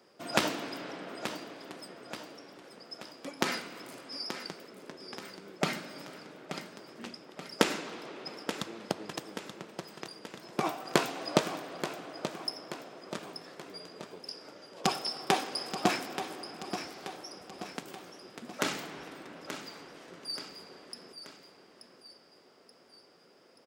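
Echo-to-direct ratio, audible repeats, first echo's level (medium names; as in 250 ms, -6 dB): -8.5 dB, 3, -10.0 dB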